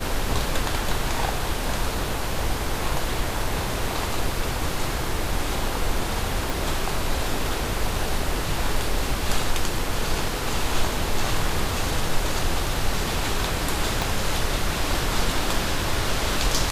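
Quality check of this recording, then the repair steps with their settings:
6.50 s: pop
14.02 s: pop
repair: de-click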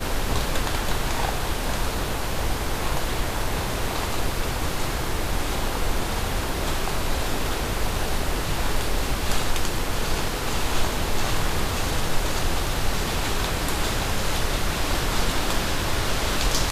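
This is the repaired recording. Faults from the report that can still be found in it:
6.50 s: pop
14.02 s: pop

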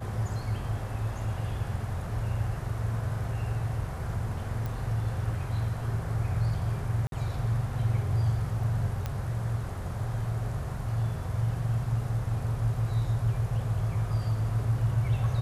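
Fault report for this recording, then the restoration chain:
4.66 s: pop
7.07–7.12 s: dropout 52 ms
9.06 s: pop -19 dBFS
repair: de-click; interpolate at 7.07 s, 52 ms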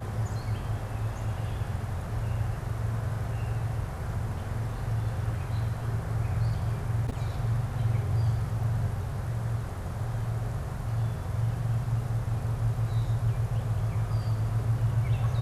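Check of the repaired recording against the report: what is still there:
nothing left

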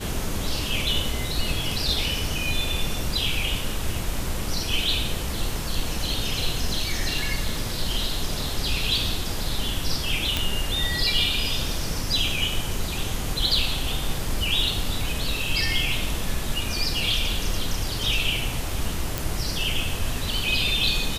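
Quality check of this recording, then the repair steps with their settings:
10.37 s: pop
19.18 s: pop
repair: de-click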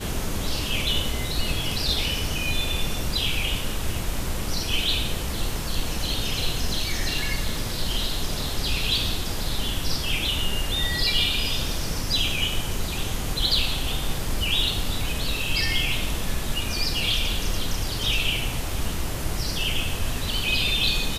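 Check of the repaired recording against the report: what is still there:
nothing left

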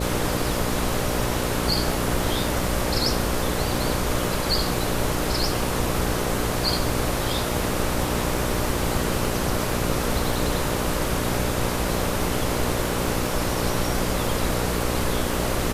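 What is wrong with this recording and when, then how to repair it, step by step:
buzz 60 Hz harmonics 10 -28 dBFS
crackle 43 per s -31 dBFS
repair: de-click; de-hum 60 Hz, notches 10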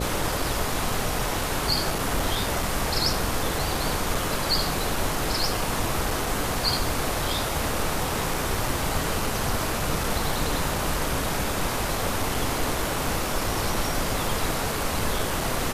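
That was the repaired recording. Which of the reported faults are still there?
nothing left

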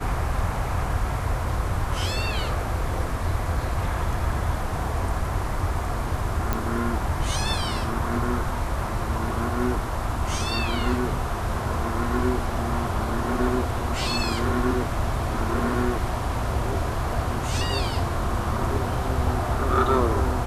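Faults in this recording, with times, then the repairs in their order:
6.53 s: pop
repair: de-click

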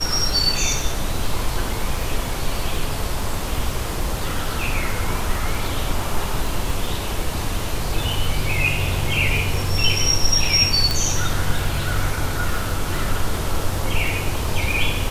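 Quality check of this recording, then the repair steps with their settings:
crackle 39 per s -26 dBFS
10.91 s: pop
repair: de-click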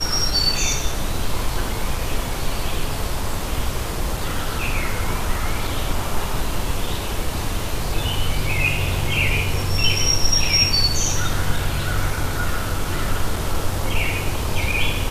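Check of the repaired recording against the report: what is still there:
nothing left

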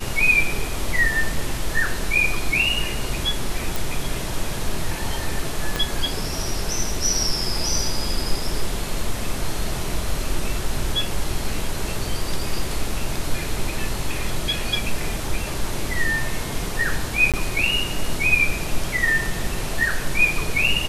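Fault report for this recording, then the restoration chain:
3.76 s: pop
5.76 s: pop -8 dBFS
17.32–17.34 s: dropout 17 ms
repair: de-click; interpolate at 17.32 s, 17 ms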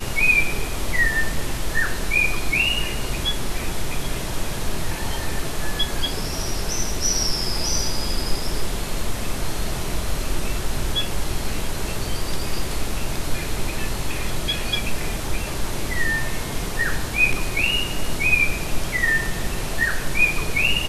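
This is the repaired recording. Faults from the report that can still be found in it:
5.76 s: pop

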